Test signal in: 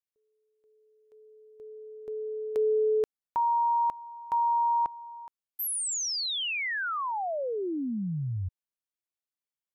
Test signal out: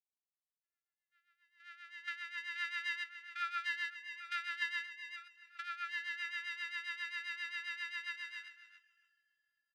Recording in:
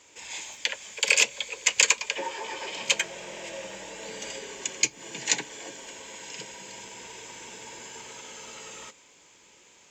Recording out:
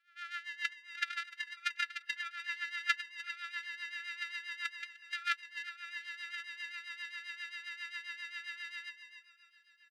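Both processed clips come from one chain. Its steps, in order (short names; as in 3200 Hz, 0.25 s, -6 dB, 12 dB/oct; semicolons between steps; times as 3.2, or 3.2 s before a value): sample sorter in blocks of 128 samples; Chebyshev high-pass 1400 Hz, order 4; high shelf 7600 Hz -2.5 dB; compressor 5:1, threshold -48 dBFS; feedback echo 0.3 s, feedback 39%, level -5 dB; rotary speaker horn 7.5 Hz; echo with dull and thin repeats by turns 0.367 s, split 2400 Hz, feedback 81%, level -14 dB; spectral expander 2.5:1; gain +11 dB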